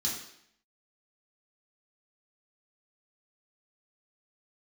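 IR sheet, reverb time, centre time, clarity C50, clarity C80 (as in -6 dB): 0.70 s, 43 ms, 4.0 dB, 7.0 dB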